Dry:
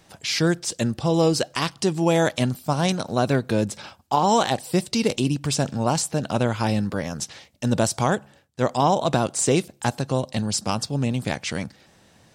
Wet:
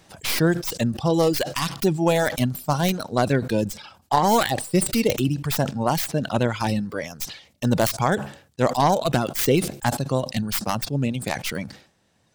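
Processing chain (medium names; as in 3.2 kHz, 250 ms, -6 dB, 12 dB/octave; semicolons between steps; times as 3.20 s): tracing distortion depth 0.24 ms; reverb removal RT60 2 s; decay stretcher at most 120 dB/s; trim +1.5 dB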